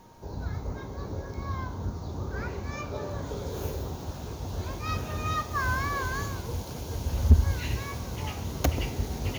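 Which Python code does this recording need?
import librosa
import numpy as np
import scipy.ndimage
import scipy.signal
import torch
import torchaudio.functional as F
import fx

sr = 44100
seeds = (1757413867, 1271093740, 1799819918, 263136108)

y = fx.fix_declip(x, sr, threshold_db=-10.0)
y = fx.notch(y, sr, hz=930.0, q=30.0)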